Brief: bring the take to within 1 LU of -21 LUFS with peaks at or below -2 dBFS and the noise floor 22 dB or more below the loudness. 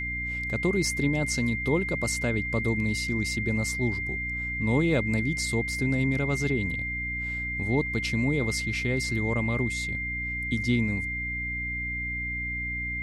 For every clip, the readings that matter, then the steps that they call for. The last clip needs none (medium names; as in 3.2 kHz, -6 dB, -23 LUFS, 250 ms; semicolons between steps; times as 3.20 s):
hum 60 Hz; highest harmonic 300 Hz; hum level -34 dBFS; steady tone 2.1 kHz; tone level -30 dBFS; loudness -27.5 LUFS; peak level -13.5 dBFS; loudness target -21.0 LUFS
-> de-hum 60 Hz, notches 5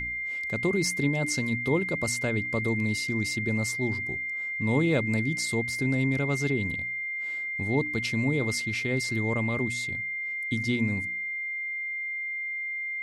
hum not found; steady tone 2.1 kHz; tone level -30 dBFS
-> band-stop 2.1 kHz, Q 30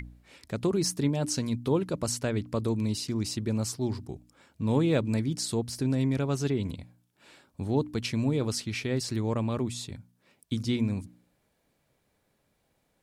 steady tone not found; loudness -29.5 LUFS; peak level -13.0 dBFS; loudness target -21.0 LUFS
-> trim +8.5 dB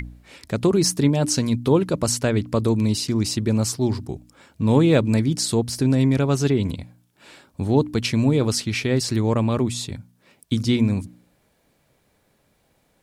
loudness -21.0 LUFS; peak level -4.5 dBFS; noise floor -65 dBFS